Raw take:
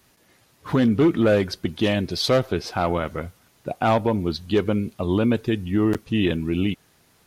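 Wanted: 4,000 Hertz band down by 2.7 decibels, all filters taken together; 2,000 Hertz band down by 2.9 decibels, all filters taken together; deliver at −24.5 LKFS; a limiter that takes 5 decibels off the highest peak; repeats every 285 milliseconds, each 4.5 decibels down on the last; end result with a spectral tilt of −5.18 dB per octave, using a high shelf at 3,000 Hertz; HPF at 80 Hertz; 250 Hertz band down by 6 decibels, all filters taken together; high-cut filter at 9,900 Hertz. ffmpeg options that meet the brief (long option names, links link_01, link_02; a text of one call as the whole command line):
ffmpeg -i in.wav -af "highpass=80,lowpass=9900,equalizer=frequency=250:width_type=o:gain=-8,equalizer=frequency=2000:width_type=o:gain=-4.5,highshelf=frequency=3000:gain=6.5,equalizer=frequency=4000:width_type=o:gain=-7,alimiter=limit=-15.5dB:level=0:latency=1,aecho=1:1:285|570|855|1140|1425|1710|1995|2280|2565:0.596|0.357|0.214|0.129|0.0772|0.0463|0.0278|0.0167|0.01,volume=2dB" out.wav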